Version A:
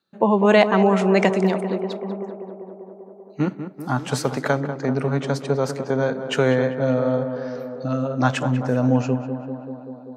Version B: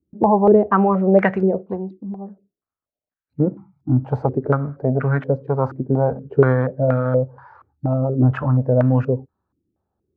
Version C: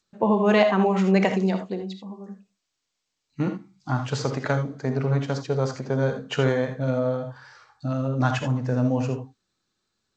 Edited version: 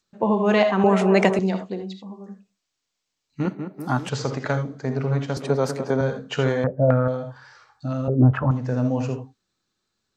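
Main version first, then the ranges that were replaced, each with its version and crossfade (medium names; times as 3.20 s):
C
0.84–1.39 s: from A
3.45–4.09 s: from A
5.37–6.01 s: from A
6.64–7.08 s: from B
8.08–8.51 s: from B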